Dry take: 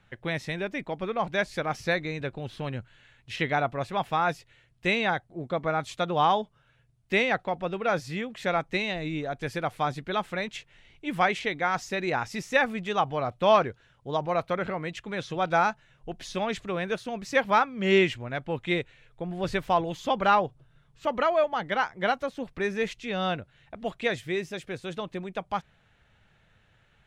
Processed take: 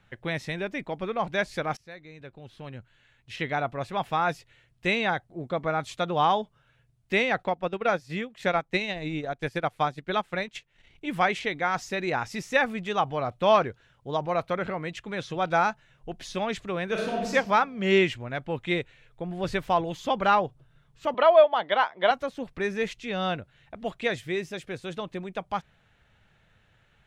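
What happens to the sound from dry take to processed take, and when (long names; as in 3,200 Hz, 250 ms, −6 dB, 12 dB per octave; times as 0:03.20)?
0:01.77–0:04.15: fade in, from −23.5 dB
0:07.40–0:11.06: transient designer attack +3 dB, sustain −11 dB
0:16.85–0:17.31: thrown reverb, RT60 1.2 s, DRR −1.5 dB
0:21.14–0:22.11: loudspeaker in its box 300–4,600 Hz, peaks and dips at 640 Hz +8 dB, 1,000 Hz +6 dB, 3,400 Hz +9 dB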